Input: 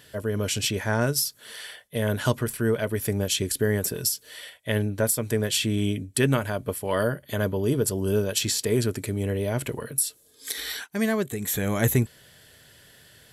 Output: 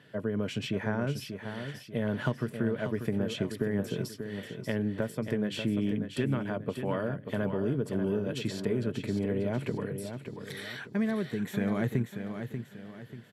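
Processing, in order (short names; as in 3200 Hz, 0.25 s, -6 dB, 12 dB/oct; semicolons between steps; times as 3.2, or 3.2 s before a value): HPF 140 Hz 24 dB/oct; high shelf 6100 Hz -10 dB; compressor, threshold -26 dBFS, peak gain reduction 9.5 dB; tone controls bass +8 dB, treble -13 dB; on a send: feedback echo 0.588 s, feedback 38%, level -8 dB; on the sum: gain -3 dB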